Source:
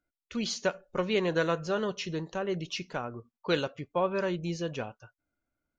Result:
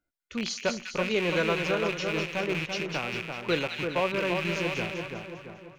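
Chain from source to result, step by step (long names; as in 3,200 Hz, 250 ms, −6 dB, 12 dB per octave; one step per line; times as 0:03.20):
loose part that buzzes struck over −46 dBFS, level −22 dBFS
echo with a time of its own for lows and highs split 1,600 Hz, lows 338 ms, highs 200 ms, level −5 dB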